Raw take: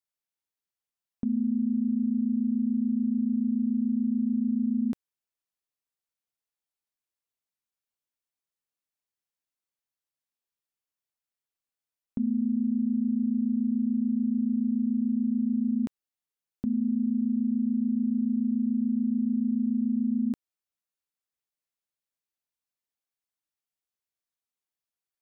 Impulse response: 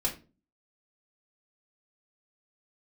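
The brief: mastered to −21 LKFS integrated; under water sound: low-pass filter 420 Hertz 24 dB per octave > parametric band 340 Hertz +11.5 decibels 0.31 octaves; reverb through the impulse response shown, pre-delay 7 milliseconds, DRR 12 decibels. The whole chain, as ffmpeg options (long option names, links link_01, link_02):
-filter_complex "[0:a]asplit=2[link_01][link_02];[1:a]atrim=start_sample=2205,adelay=7[link_03];[link_02][link_03]afir=irnorm=-1:irlink=0,volume=-17.5dB[link_04];[link_01][link_04]amix=inputs=2:normalize=0,lowpass=frequency=420:width=0.5412,lowpass=frequency=420:width=1.3066,equalizer=frequency=340:width_type=o:width=0.31:gain=11.5,volume=7dB"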